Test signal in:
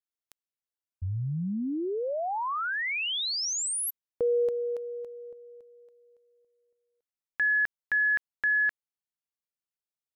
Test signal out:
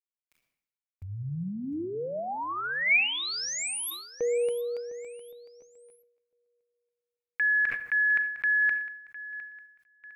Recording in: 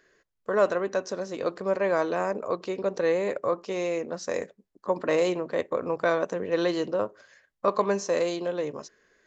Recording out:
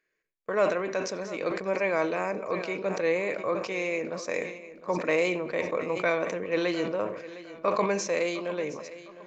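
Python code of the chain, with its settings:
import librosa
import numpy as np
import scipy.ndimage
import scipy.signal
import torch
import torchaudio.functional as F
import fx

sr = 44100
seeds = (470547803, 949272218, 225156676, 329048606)

y = fx.peak_eq(x, sr, hz=69.0, db=-5.0, octaves=1.3)
y = fx.echo_feedback(y, sr, ms=707, feedback_pct=36, wet_db=-16)
y = fx.room_shoebox(y, sr, seeds[0], volume_m3=3700.0, walls='furnished', distance_m=0.56)
y = fx.gate_hold(y, sr, open_db=-43.0, close_db=-52.0, hold_ms=38.0, range_db=-15, attack_ms=0.31, release_ms=29.0)
y = fx.peak_eq(y, sr, hz=2300.0, db=14.0, octaves=0.34)
y = fx.sustainer(y, sr, db_per_s=75.0)
y = y * 10.0 ** (-3.0 / 20.0)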